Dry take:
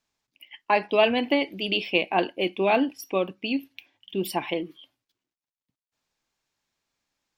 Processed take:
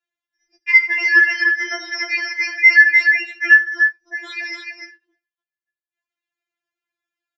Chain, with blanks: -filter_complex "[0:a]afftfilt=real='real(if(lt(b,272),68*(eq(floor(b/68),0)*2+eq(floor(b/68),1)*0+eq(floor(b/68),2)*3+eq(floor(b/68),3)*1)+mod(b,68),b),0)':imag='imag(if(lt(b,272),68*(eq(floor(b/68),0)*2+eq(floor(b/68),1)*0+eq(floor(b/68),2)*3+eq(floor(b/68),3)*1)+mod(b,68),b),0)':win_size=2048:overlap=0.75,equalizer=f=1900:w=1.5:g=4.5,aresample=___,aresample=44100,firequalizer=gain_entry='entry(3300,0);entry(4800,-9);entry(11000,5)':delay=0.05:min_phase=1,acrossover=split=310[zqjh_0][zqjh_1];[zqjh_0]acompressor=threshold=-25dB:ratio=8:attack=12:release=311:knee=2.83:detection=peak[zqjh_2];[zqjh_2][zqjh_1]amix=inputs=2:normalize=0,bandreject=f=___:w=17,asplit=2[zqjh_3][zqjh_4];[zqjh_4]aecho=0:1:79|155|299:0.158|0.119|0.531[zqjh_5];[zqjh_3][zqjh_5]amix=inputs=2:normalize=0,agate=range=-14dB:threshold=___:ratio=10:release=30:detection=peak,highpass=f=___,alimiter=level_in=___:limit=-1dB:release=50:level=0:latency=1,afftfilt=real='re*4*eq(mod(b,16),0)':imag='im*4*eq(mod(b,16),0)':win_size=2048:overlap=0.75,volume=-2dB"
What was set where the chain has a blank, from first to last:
16000, 3300, -44dB, 56, 10dB